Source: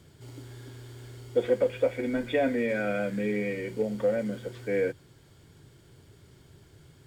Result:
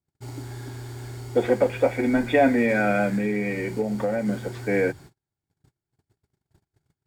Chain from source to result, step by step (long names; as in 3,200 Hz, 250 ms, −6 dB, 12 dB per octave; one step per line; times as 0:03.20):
noise gate −49 dBFS, range −41 dB
thirty-one-band graphic EQ 500 Hz −7 dB, 800 Hz +8 dB, 3,150 Hz −8 dB
0:03.16–0:04.28: downward compressor 3 to 1, threshold −31 dBFS, peak gain reduction 5 dB
level +8.5 dB